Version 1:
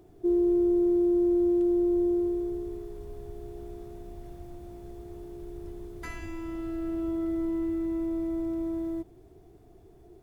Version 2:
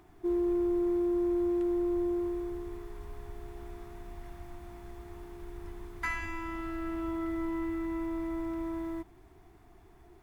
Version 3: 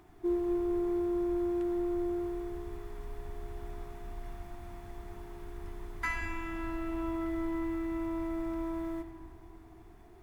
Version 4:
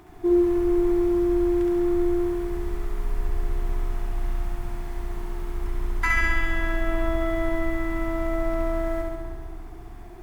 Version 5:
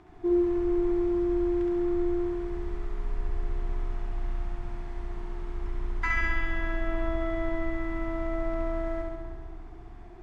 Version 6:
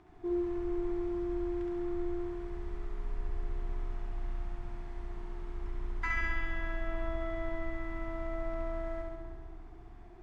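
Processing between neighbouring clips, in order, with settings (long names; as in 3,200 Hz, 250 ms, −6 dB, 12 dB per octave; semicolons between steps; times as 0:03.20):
octave-band graphic EQ 125/500/1,000/2,000 Hz −5/−12/+10/+8 dB
comb and all-pass reverb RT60 3.8 s, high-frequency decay 0.25×, pre-delay 45 ms, DRR 6 dB
flutter between parallel walls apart 11.7 metres, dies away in 1.3 s; level +8.5 dB
high-frequency loss of the air 98 metres; level −4.5 dB
dynamic equaliser 310 Hz, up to −4 dB, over −41 dBFS, Q 2.3; level −5.5 dB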